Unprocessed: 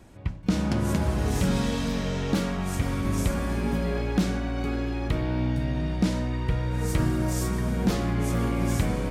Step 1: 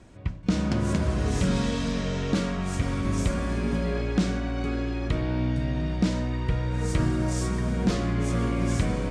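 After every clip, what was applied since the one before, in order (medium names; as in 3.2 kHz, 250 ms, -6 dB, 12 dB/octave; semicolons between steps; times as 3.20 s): low-pass 8.8 kHz 24 dB/octave; band-stop 840 Hz, Q 12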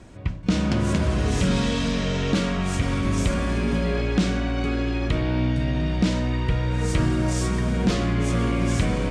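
dynamic bell 2.9 kHz, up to +4 dB, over -51 dBFS, Q 1.4; in parallel at -1.5 dB: peak limiter -23.5 dBFS, peak gain reduction 10 dB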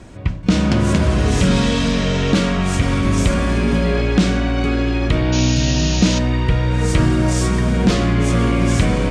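painted sound noise, 5.32–6.19 s, 2.4–7 kHz -33 dBFS; trim +6.5 dB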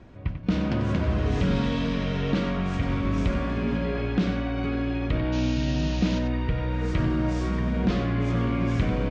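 distance through air 190 m; echo from a far wall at 16 m, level -9 dB; trim -9 dB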